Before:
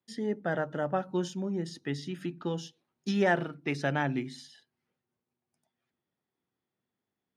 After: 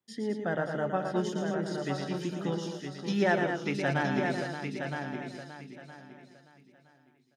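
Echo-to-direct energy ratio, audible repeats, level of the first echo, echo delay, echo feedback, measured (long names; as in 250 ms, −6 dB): −0.5 dB, 12, −6.5 dB, 114 ms, repeats not evenly spaced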